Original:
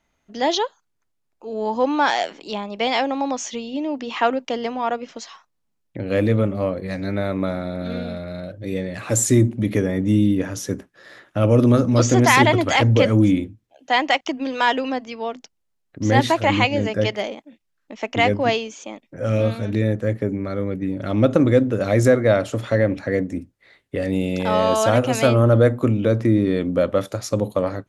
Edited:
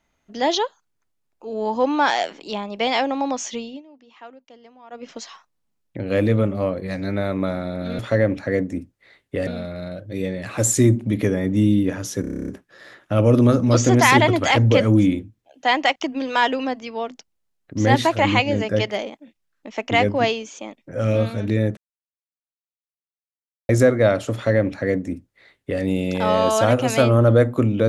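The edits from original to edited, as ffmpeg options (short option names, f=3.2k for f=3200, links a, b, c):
-filter_complex "[0:a]asplit=16[a][b][c][d][e][f][g][h][i][j][k][l][m][n][o][p];[a]atrim=end=3.82,asetpts=PTS-STARTPTS,afade=t=out:st=3.62:d=0.2:silence=0.0749894[q];[b]atrim=start=3.82:end=4.9,asetpts=PTS-STARTPTS,volume=-22.5dB[r];[c]atrim=start=4.9:end=7.992,asetpts=PTS-STARTPTS,afade=t=in:d=0.2:silence=0.0749894[s];[d]atrim=start=22.588:end=24.072[t];[e]atrim=start=7.988:end=10.762[u];[f]atrim=start=10.728:end=10.762[v];[g]atrim=start=10.728:end=10.762[w];[h]atrim=start=10.728:end=10.762[x];[i]atrim=start=10.728:end=10.762[y];[j]atrim=start=10.728:end=10.762[z];[k]atrim=start=10.728:end=10.762[aa];[l]atrim=start=10.728:end=10.762[ab];[m]atrim=start=10.728:end=10.762[ac];[n]atrim=start=10.728:end=20.02,asetpts=PTS-STARTPTS,afade=t=out:st=9.288:d=0.004:c=hsin[ad];[o]atrim=start=20.02:end=21.94,asetpts=PTS-STARTPTS,volume=0[ae];[p]atrim=start=21.94,asetpts=PTS-STARTPTS,afade=t=in:d=0.004:c=hsin[af];[q][r][s]concat=n=3:v=0:a=1[ag];[ag][t]acrossfade=d=0.004:c1=hsin:c2=hsin[ah];[ah][u]acrossfade=d=0.004:c1=hsin:c2=hsin[ai];[ai][v]acrossfade=d=0.004:c1=hsin:c2=hsin[aj];[aj][w]acrossfade=d=0.004:c1=hsin:c2=hsin[ak];[ak][x]acrossfade=d=0.004:c1=hsin:c2=hsin[al];[al][y]acrossfade=d=0.004:c1=hsin:c2=hsin[am];[am][z]acrossfade=d=0.004:c1=hsin:c2=hsin[an];[an][aa]acrossfade=d=0.004:c1=hsin:c2=hsin[ao];[ao][ab]acrossfade=d=0.004:c1=hsin:c2=hsin[ap];[ap][ac]acrossfade=d=0.004:c1=hsin:c2=hsin[aq];[ad][ae][af]concat=n=3:v=0:a=1[ar];[aq][ar]acrossfade=d=0.004:c1=hsin:c2=hsin"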